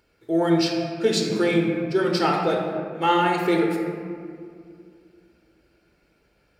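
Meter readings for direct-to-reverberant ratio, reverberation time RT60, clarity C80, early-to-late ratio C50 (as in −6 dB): 0.5 dB, 2.3 s, 4.0 dB, 2.5 dB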